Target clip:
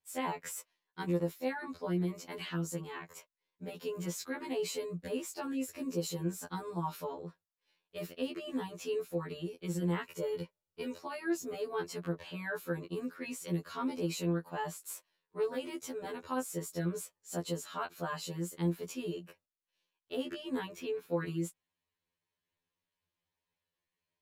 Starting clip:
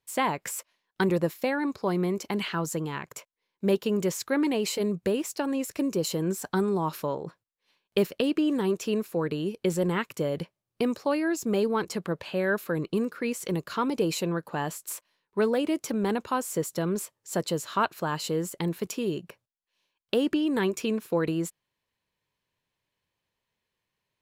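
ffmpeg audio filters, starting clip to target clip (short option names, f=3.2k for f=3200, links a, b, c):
-filter_complex "[0:a]asettb=1/sr,asplit=3[a][b][c];[a]atrim=end=10.044[d];[b]atrim=start=10.04:end=10.97,asetpts=PTS-STARTPTS,afade=t=in:d=0.004:c=qsin,afade=t=out:st=0.926:d=0.004:c=qsin,aecho=1:1:2.1:0.57,atrim=end_sample=41013[e];[c]atrim=start=10.966[f];[d][e]acrossfade=d=0.004:c1=hsin:c2=qsin[g];[g][f]acrossfade=d=0.004:c1=qsin:c2=hsin,asettb=1/sr,asplit=3[h][i][j];[h]atrim=end=20.674[k];[i]atrim=start=20.67:end=21.13,asetpts=PTS-STARTPTS,afade=t=in:d=0.004:c=qsin,afade=t=out:st=0.456:d=0.004:c=qsin,equalizer=f=8.4k:w=0.8:g=-9.5[l];[j]atrim=start=21.126[m];[k][l]acrossfade=d=0.004:c1=hsin:c2=qsin[n];[n][m]acrossfade=d=0.004:c1=qsin:c2=hsin,alimiter=limit=-19dB:level=0:latency=1:release=28,afftfilt=real='re*2*eq(mod(b,4),0)':imag='im*2*eq(mod(b,4),0)':win_size=2048:overlap=0.75,volume=-5.5dB"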